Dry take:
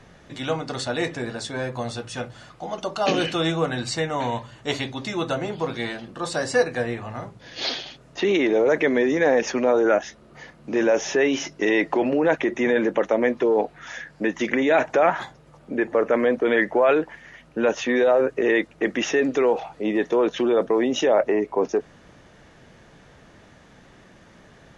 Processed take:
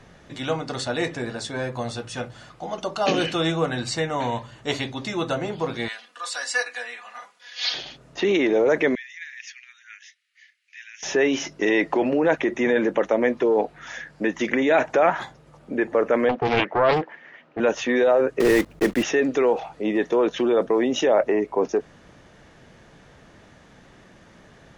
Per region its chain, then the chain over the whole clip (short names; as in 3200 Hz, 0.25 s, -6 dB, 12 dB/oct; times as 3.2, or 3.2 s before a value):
5.88–7.74 HPF 1400 Hz + comb 4.1 ms, depth 76%
8.95–11.03 steep high-pass 1900 Hz 48 dB/oct + high shelf 2400 Hz -12 dB
16.29–17.6 BPF 270–2900 Hz + Doppler distortion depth 0.69 ms
18.4–19.05 block floating point 3-bit + tilt -2 dB/oct
whole clip: dry